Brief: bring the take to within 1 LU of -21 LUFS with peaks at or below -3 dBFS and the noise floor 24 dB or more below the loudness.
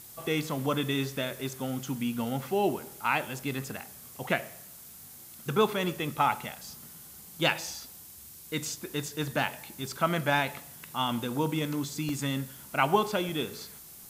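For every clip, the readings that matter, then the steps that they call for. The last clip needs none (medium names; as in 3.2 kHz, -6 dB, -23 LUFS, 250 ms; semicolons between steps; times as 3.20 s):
dropouts 2; longest dropout 1.7 ms; noise floor -49 dBFS; noise floor target -55 dBFS; loudness -31.0 LUFS; peak level -10.0 dBFS; loudness target -21.0 LUFS
-> interpolate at 12.09/13.29 s, 1.7 ms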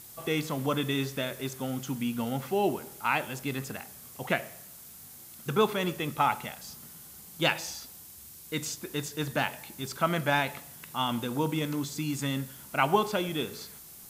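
dropouts 0; noise floor -49 dBFS; noise floor target -55 dBFS
-> noise reduction 6 dB, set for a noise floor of -49 dBFS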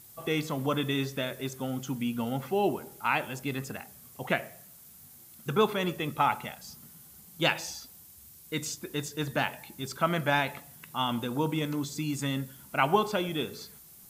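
noise floor -53 dBFS; noise floor target -55 dBFS
-> noise reduction 6 dB, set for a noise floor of -53 dBFS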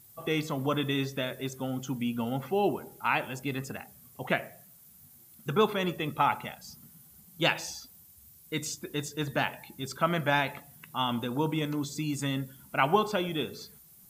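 noise floor -56 dBFS; loudness -31.0 LUFS; peak level -10.0 dBFS; loudness target -21.0 LUFS
-> trim +10 dB; peak limiter -3 dBFS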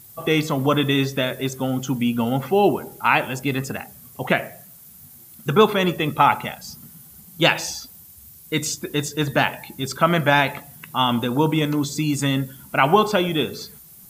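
loudness -21.0 LUFS; peak level -3.0 dBFS; noise floor -46 dBFS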